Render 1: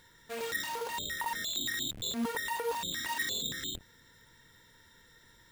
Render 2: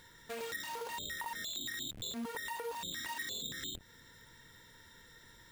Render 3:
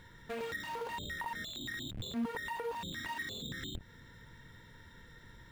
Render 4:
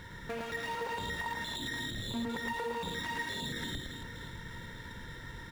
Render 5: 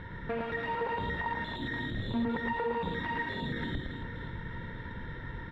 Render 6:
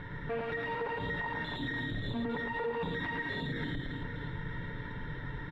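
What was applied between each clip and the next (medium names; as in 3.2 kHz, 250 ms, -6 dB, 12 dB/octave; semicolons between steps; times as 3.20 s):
compression 3:1, threshold -43 dBFS, peak gain reduction 10.5 dB; trim +2 dB
tone controls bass +7 dB, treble -11 dB; trim +2 dB
compression 2.5:1, threshold -48 dBFS, peak gain reduction 11 dB; reverse bouncing-ball echo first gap 110 ms, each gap 1.5×, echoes 5; sliding maximum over 3 samples; trim +8.5 dB
distance through air 450 m; trim +6 dB
comb 6.9 ms, depth 48%; peak limiter -27 dBFS, peak gain reduction 6.5 dB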